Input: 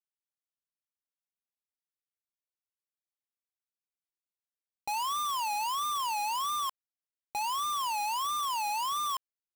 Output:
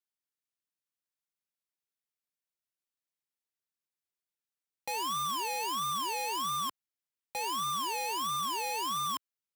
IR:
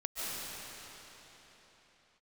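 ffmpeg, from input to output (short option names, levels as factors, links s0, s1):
-filter_complex "[0:a]highpass=83,acrossover=split=740[s0][s1];[s0]acrusher=samples=33:mix=1:aa=0.000001[s2];[s2][s1]amix=inputs=2:normalize=0"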